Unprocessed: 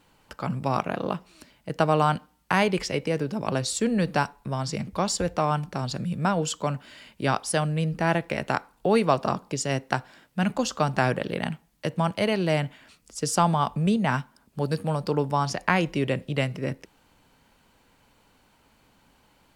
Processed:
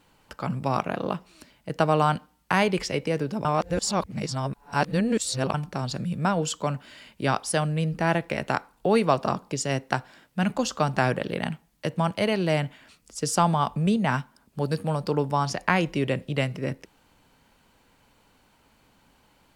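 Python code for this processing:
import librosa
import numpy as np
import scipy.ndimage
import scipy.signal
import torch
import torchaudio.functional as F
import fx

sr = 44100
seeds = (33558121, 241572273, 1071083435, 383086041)

y = fx.edit(x, sr, fx.reverse_span(start_s=3.45, length_s=2.09), tone=tone)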